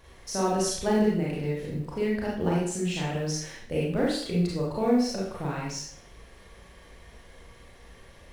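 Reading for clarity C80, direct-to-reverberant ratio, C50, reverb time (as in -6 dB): 5.5 dB, -5.5 dB, 0.5 dB, 0.60 s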